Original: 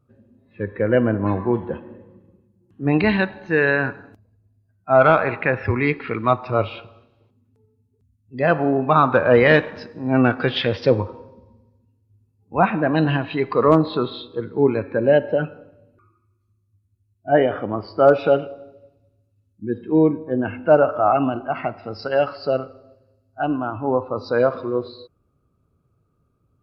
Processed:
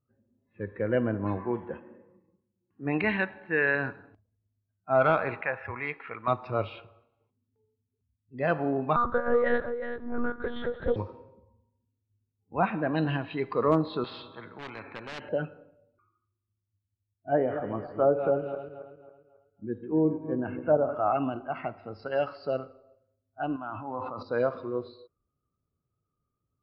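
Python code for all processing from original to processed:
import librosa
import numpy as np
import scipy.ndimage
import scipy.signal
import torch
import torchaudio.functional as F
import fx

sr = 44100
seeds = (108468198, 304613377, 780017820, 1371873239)

y = fx.chain(x, sr, fx.lowpass_res(hz=2300.0, q=1.6),
    fx.low_shelf(hz=160.0, db=-7.0), at=(1.38, 3.75))
y = fx.chain(y, sr, fx.lowpass(hz=2900.0, slope=12),
    fx.low_shelf_res(hz=480.0, db=-10.5, q=1.5), at=(5.41, 6.28))
y = fx.chain(y, sr, fx.fixed_phaser(hz=510.0, stages=8),
    fx.echo_single(ms=375, db=-9.0),
    fx.lpc_monotone(seeds[0], pitch_hz=240.0, order=10), at=(8.96, 10.96))
y = fx.chain(y, sr, fx.highpass(hz=120.0, slope=12),
    fx.clip_hard(threshold_db=-13.0),
    fx.spectral_comp(ratio=4.0), at=(14.04, 15.29))
y = fx.chain(y, sr, fx.reverse_delay_fb(ms=136, feedback_pct=61, wet_db=-10.0),
    fx.bessel_lowpass(hz=1900.0, order=2),
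    fx.env_lowpass_down(base_hz=830.0, full_db=-9.5), at=(17.33, 20.95))
y = fx.chain(y, sr, fx.highpass(hz=330.0, slope=6),
    fx.peak_eq(hz=430.0, db=-14.0, octaves=0.68),
    fx.sustainer(db_per_s=24.0), at=(23.56, 24.23))
y = fx.noise_reduce_blind(y, sr, reduce_db=8)
y = fx.env_lowpass(y, sr, base_hz=1900.0, full_db=-13.0)
y = F.gain(torch.from_numpy(y), -9.0).numpy()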